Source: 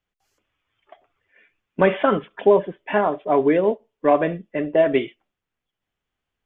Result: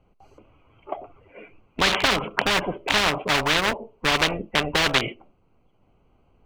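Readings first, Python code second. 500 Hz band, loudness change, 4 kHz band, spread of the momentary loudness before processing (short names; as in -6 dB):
-10.0 dB, -1.5 dB, n/a, 7 LU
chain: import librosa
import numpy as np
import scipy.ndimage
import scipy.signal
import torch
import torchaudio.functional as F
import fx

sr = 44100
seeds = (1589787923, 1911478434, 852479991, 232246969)

y = fx.wiener(x, sr, points=25)
y = fx.spectral_comp(y, sr, ratio=10.0)
y = y * 10.0 ** (3.0 / 20.0)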